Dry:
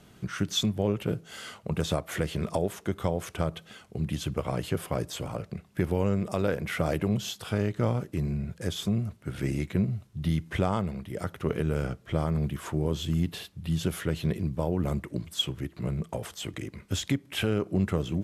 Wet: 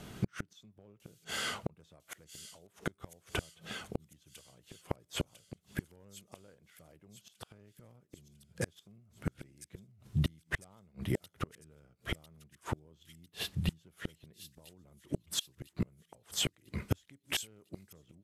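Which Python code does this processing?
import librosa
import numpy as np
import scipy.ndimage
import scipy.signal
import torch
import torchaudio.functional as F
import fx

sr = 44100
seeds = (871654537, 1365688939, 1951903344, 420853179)

y = np.clip(x, -10.0 ** (-16.0 / 20.0), 10.0 ** (-16.0 / 20.0))
y = fx.gate_flip(y, sr, shuts_db=-25.0, range_db=-38)
y = fx.echo_wet_highpass(y, sr, ms=1000, feedback_pct=52, hz=5400.0, wet_db=-6.5)
y = F.gain(torch.from_numpy(y), 6.0).numpy()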